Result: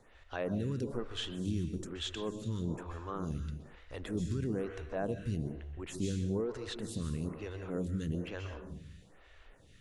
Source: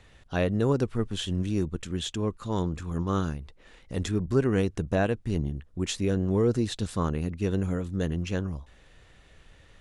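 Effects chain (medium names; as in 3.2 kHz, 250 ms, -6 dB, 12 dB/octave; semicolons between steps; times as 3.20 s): peak limiter -23 dBFS, peak gain reduction 10.5 dB; plate-style reverb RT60 1 s, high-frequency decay 0.75×, pre-delay 115 ms, DRR 6 dB; lamp-driven phase shifter 1.1 Hz; trim -1.5 dB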